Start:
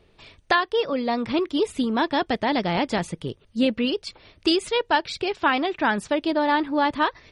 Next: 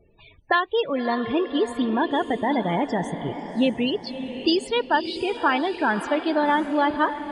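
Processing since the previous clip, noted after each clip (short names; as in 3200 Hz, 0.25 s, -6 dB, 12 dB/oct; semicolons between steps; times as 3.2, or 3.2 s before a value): loudest bins only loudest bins 32; diffused feedback echo 0.587 s, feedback 44%, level -10 dB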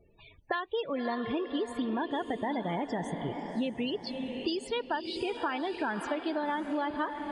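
compressor, threshold -24 dBFS, peak gain reduction 9 dB; gain -4.5 dB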